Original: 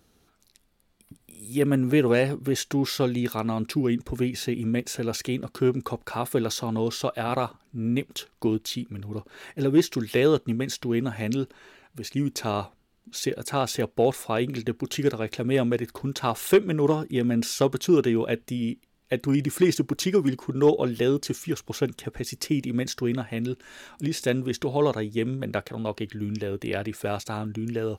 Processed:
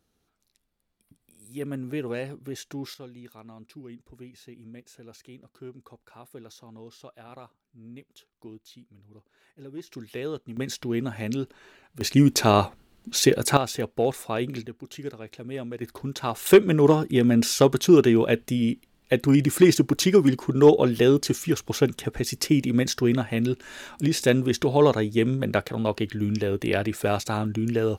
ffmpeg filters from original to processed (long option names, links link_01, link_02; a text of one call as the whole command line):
ffmpeg -i in.wav -af "asetnsamples=nb_out_samples=441:pad=0,asendcmd='2.94 volume volume -19.5dB;9.87 volume volume -12dB;10.57 volume volume -2dB;12.01 volume volume 9dB;13.57 volume volume -2dB;14.66 volume volume -11dB;15.81 volume volume -2.5dB;16.46 volume volume 4.5dB',volume=-10.5dB" out.wav